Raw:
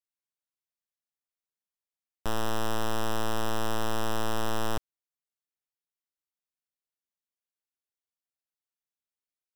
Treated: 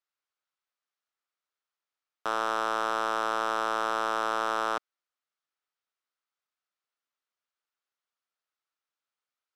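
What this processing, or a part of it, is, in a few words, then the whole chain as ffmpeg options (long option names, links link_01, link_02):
intercom: -af "highpass=420,lowpass=5000,equalizer=frequency=1300:width_type=o:width=0.48:gain=8,asoftclip=type=tanh:threshold=-20dB,volume=5dB"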